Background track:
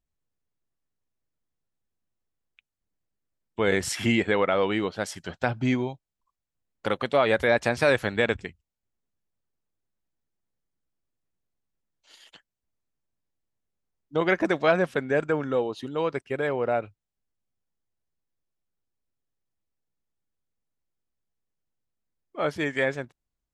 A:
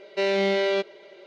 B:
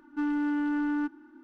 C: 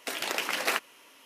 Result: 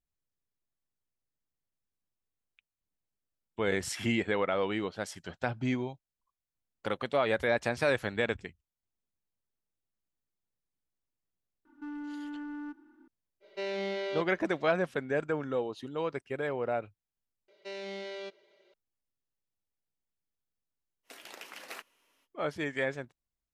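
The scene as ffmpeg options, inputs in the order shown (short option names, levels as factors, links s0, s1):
-filter_complex "[1:a]asplit=2[s0][s1];[0:a]volume=0.473[s2];[2:a]alimiter=level_in=1.58:limit=0.0631:level=0:latency=1:release=71,volume=0.631[s3];[s1]highshelf=f=4500:g=8.5[s4];[s2]asplit=2[s5][s6];[s5]atrim=end=17.484[s7];[s4]atrim=end=1.26,asetpts=PTS-STARTPTS,volume=0.126[s8];[s6]atrim=start=18.736[s9];[s3]atrim=end=1.43,asetpts=PTS-STARTPTS,volume=0.422,afade=t=in:d=0.004:c=hsin,afade=t=out:st=1.426:d=0.004:c=hsin,adelay=11650[s10];[s0]atrim=end=1.26,asetpts=PTS-STARTPTS,volume=0.266,afade=t=in:d=0.05,afade=t=out:st=1.21:d=0.05,adelay=13400[s11];[3:a]atrim=end=1.25,asetpts=PTS-STARTPTS,volume=0.15,afade=t=in:d=0.05,afade=t=out:st=1.2:d=0.05,adelay=21030[s12];[s7][s8]acrossfade=d=0.004:c1=hsin:c2=hsin[s13];[s13][s9]acrossfade=d=0.004:c1=hsin:c2=hsin[s14];[s14][s10][s11][s12]amix=inputs=4:normalize=0"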